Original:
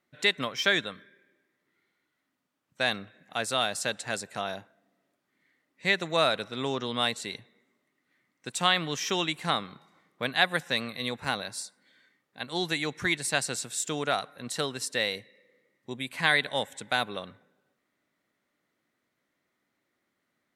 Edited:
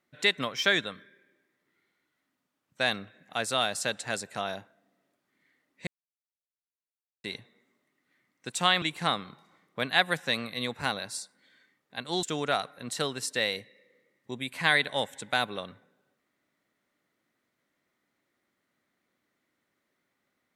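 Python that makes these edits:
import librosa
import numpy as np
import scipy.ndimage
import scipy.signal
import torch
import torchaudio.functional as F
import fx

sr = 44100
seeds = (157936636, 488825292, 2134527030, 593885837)

y = fx.edit(x, sr, fx.silence(start_s=5.87, length_s=1.37),
    fx.cut(start_s=8.82, length_s=0.43),
    fx.cut(start_s=12.66, length_s=1.16), tone=tone)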